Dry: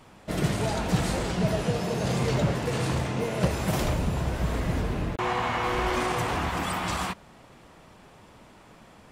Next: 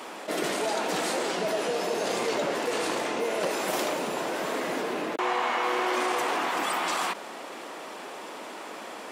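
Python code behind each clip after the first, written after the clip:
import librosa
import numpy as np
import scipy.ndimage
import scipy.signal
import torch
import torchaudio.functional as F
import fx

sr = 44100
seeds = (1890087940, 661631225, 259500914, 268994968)

y = scipy.signal.sosfilt(scipy.signal.butter(4, 300.0, 'highpass', fs=sr, output='sos'), x)
y = fx.env_flatten(y, sr, amount_pct=50)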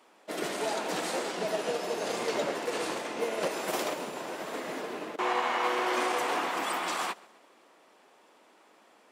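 y = fx.echo_feedback(x, sr, ms=132, feedback_pct=58, wet_db=-13.0)
y = fx.upward_expand(y, sr, threshold_db=-39.0, expansion=2.5)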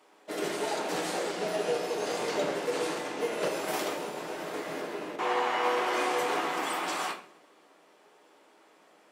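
y = fx.room_shoebox(x, sr, seeds[0], volume_m3=38.0, walls='mixed', distance_m=0.47)
y = y * 10.0 ** (-2.0 / 20.0)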